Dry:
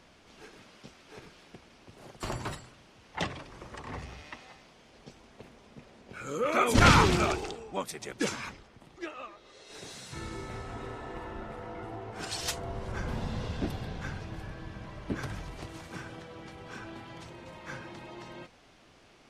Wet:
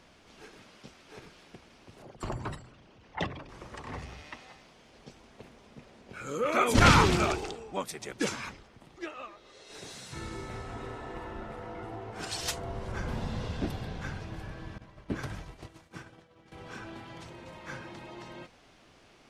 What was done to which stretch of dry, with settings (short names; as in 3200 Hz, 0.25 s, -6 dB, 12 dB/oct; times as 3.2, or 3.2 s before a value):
2.02–3.49 formant sharpening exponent 1.5
14.78–16.52 expander -37 dBFS